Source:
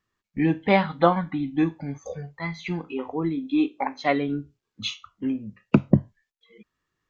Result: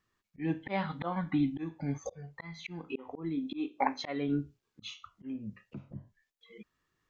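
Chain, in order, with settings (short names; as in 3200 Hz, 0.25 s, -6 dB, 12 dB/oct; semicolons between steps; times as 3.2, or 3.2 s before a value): auto swell 0.374 s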